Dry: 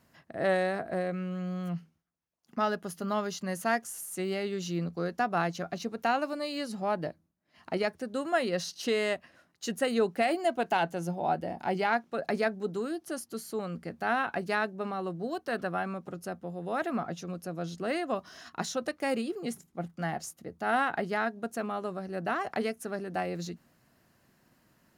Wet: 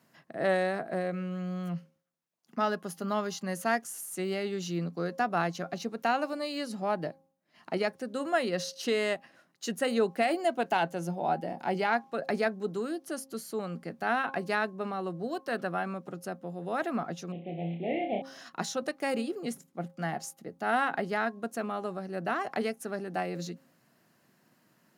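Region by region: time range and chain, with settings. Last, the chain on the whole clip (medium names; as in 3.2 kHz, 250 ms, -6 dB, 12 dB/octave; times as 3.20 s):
17.32–18.22 s: CVSD coder 16 kbps + elliptic band-stop 790–2100 Hz, stop band 50 dB + flutter echo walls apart 5.1 m, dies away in 0.37 s
whole clip: high-pass 130 Hz 24 dB/octave; de-hum 268.5 Hz, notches 4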